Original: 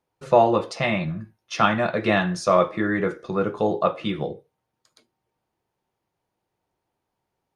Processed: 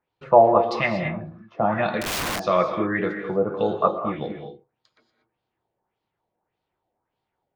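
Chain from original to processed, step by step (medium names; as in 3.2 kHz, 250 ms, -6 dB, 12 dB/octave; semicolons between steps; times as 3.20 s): LFO low-pass sine 1.7 Hz 610–4000 Hz; gated-style reverb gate 260 ms rising, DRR 6.5 dB; 2.01–2.41 s: integer overflow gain 19 dB; trim -3 dB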